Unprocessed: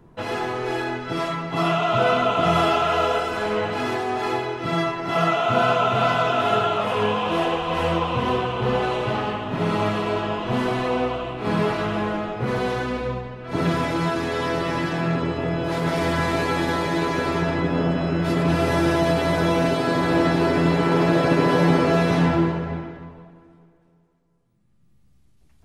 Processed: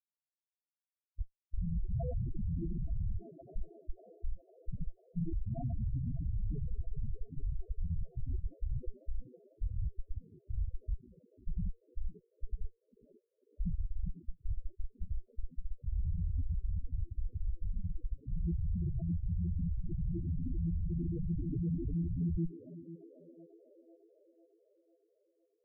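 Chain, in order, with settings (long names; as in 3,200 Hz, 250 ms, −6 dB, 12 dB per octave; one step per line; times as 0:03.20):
comparator with hysteresis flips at −15 dBFS
feedback echo with a band-pass in the loop 499 ms, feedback 61%, band-pass 510 Hz, level −10 dB
spectral peaks only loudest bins 4
level −7.5 dB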